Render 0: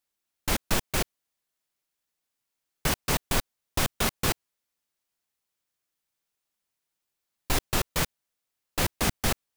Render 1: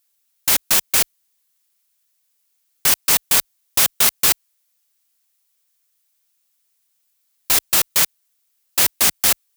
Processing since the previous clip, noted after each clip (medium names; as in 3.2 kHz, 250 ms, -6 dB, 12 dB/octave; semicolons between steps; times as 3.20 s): tilt EQ +3.5 dB/octave; trim +4 dB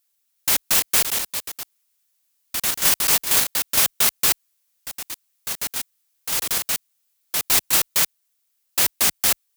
ever faster or slower copies 373 ms, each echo +4 st, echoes 3; trim -3 dB